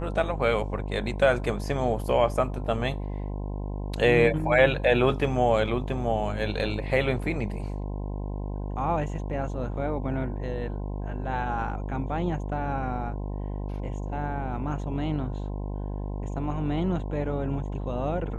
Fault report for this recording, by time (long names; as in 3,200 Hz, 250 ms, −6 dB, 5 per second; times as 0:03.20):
mains buzz 50 Hz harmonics 21 −32 dBFS